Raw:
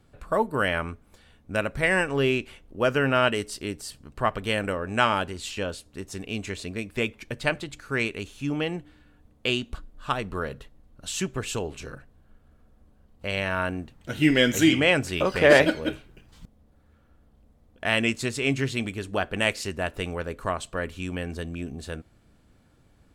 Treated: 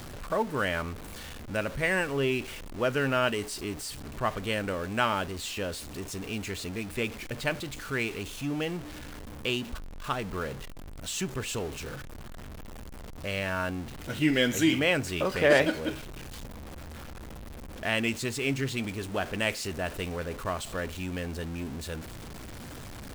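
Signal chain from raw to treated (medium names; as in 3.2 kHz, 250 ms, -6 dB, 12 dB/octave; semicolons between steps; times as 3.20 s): jump at every zero crossing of -31 dBFS; trim -5.5 dB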